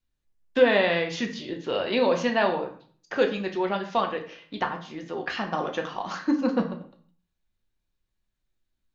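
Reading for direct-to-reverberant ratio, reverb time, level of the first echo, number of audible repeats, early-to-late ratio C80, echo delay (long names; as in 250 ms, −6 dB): 3.0 dB, 0.50 s, no echo audible, no echo audible, 13.5 dB, no echo audible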